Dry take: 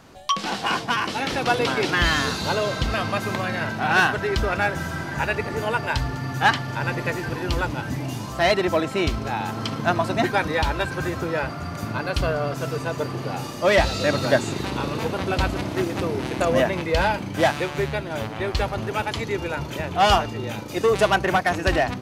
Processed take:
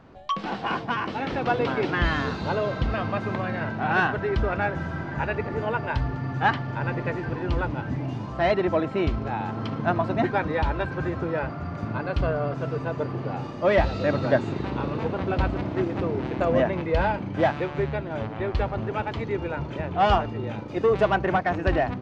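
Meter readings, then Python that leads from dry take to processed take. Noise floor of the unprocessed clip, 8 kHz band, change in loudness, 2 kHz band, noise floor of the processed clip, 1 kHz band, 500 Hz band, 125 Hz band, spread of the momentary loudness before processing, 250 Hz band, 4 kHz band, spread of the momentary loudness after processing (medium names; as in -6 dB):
-33 dBFS, under -20 dB, -3.0 dB, -5.5 dB, -35 dBFS, -3.0 dB, -1.5 dB, -0.5 dB, 9 LU, -1.0 dB, -11.0 dB, 8 LU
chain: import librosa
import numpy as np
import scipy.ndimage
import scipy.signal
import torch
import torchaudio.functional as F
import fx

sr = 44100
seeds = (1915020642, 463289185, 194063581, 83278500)

y = fx.spacing_loss(x, sr, db_at_10k=32)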